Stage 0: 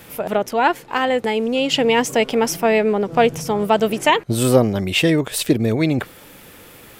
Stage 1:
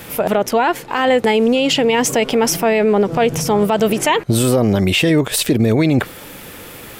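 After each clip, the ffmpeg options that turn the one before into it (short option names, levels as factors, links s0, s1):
-af "alimiter=level_in=4.73:limit=0.891:release=50:level=0:latency=1,volume=0.531"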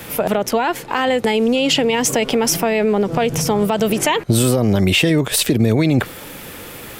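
-filter_complex "[0:a]acrossover=split=180|3000[s0][s1][s2];[s1]acompressor=threshold=0.178:ratio=6[s3];[s0][s3][s2]amix=inputs=3:normalize=0,volume=1.12"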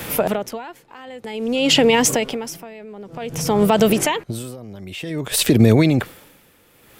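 -af "aeval=exprs='val(0)*pow(10,-24*(0.5-0.5*cos(2*PI*0.53*n/s))/20)':c=same,volume=1.41"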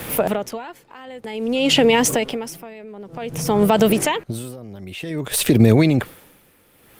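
-ar 48000 -c:a libopus -b:a 32k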